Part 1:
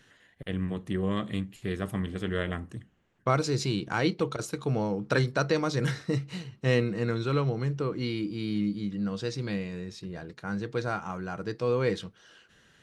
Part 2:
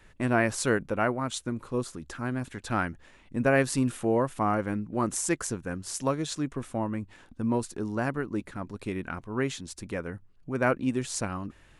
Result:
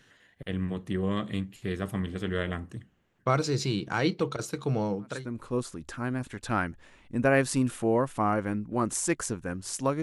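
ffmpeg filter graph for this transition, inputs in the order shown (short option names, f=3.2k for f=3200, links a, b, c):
-filter_complex "[0:a]apad=whole_dur=10.02,atrim=end=10.02,atrim=end=5.4,asetpts=PTS-STARTPTS[a];[1:a]atrim=start=1.13:end=6.23,asetpts=PTS-STARTPTS[b];[a][b]acrossfade=d=0.48:c1=qua:c2=qua"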